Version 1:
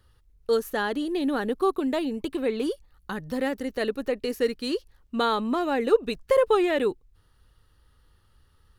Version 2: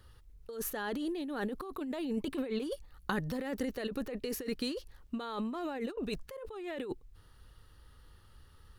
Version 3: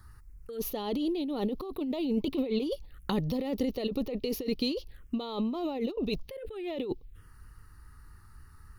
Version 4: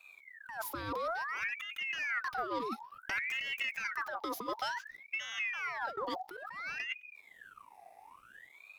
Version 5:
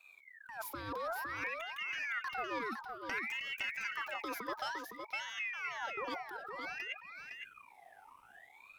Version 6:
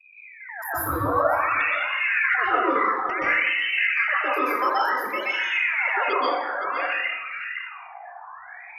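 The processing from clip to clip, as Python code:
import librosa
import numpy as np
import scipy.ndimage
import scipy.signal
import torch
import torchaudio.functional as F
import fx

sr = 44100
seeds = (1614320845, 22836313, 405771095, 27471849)

y1 = fx.over_compress(x, sr, threshold_db=-33.0, ratio=-1.0)
y1 = y1 * librosa.db_to_amplitude(-4.0)
y2 = fx.env_phaser(y1, sr, low_hz=470.0, high_hz=1600.0, full_db=-37.0)
y2 = y2 * librosa.db_to_amplitude(6.0)
y3 = fx.leveller(y2, sr, passes=1)
y3 = fx.ring_lfo(y3, sr, carrier_hz=1600.0, swing_pct=55, hz=0.57)
y3 = y3 * librosa.db_to_amplitude(-6.0)
y4 = y3 + 10.0 ** (-6.0 / 20.0) * np.pad(y3, (int(511 * sr / 1000.0), 0))[:len(y3)]
y4 = y4 * librosa.db_to_amplitude(-3.5)
y5 = fx.envelope_sharpen(y4, sr, power=3.0)
y5 = fx.rev_plate(y5, sr, seeds[0], rt60_s=0.88, hf_ratio=0.7, predelay_ms=115, drr_db=-10.0)
y5 = y5 * librosa.db_to_amplitude(7.0)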